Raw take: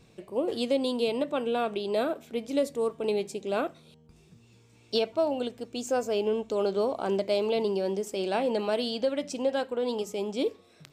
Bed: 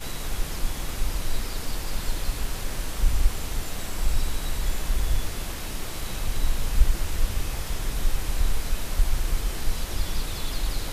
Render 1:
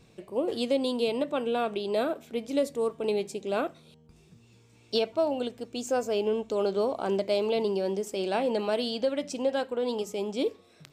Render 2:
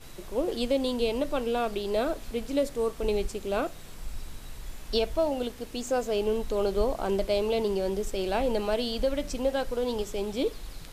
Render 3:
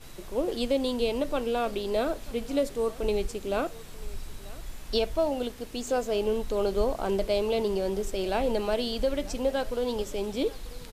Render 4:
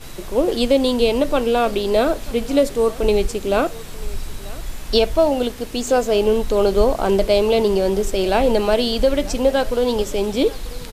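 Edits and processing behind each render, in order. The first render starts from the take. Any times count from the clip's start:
no processing that can be heard
mix in bed −14 dB
single-tap delay 939 ms −21 dB
level +10.5 dB

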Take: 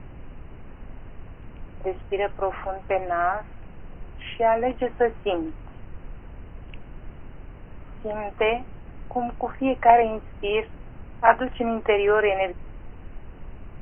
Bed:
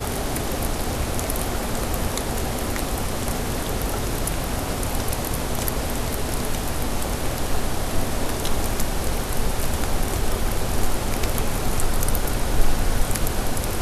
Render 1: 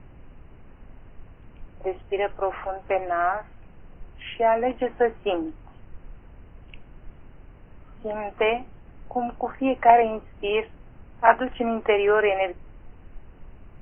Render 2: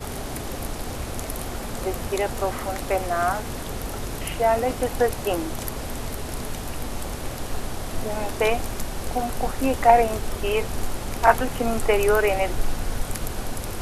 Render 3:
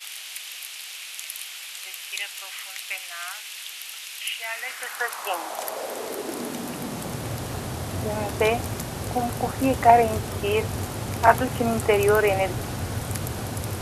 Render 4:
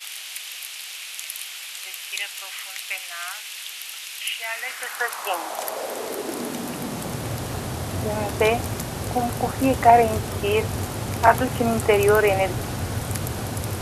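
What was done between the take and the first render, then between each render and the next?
noise reduction from a noise print 6 dB
mix in bed −6 dB
high-pass filter sweep 2,700 Hz → 100 Hz, 0:04.37–0:07.36
level +2 dB; brickwall limiter −2 dBFS, peak gain reduction 3 dB

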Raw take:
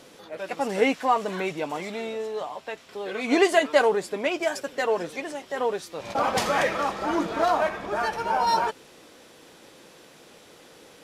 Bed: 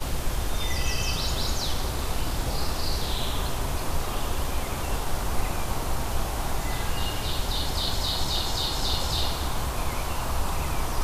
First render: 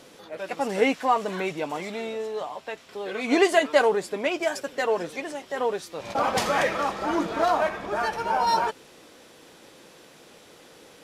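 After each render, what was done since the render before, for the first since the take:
no processing that can be heard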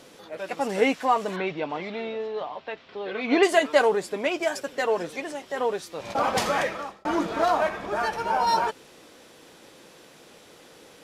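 0:01.36–0:03.43: low-pass filter 4,300 Hz 24 dB per octave
0:06.48–0:07.05: fade out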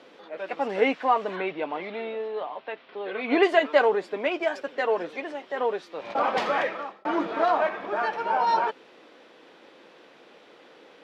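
three-way crossover with the lows and the highs turned down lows −21 dB, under 210 Hz, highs −24 dB, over 4,000 Hz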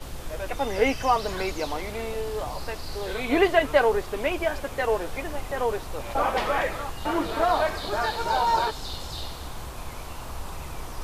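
mix in bed −8.5 dB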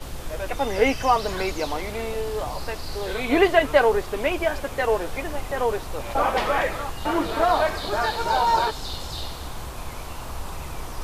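level +2.5 dB

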